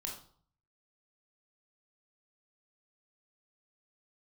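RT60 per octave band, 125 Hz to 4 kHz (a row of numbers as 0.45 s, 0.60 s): 0.80 s, 0.60 s, 0.50 s, 0.55 s, 0.40 s, 0.40 s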